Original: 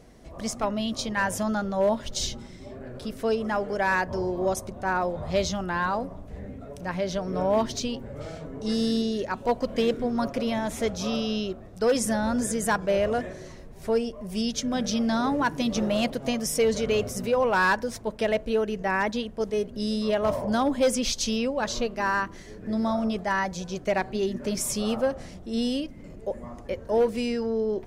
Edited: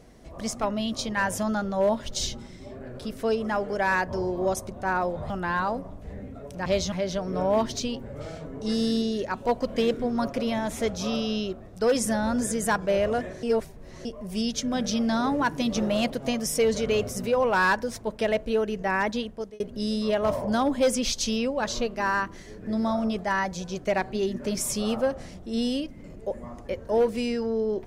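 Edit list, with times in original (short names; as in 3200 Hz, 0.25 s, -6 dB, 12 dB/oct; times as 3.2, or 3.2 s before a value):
5.3–5.56 move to 6.92
13.43–14.05 reverse
19.25–19.6 fade out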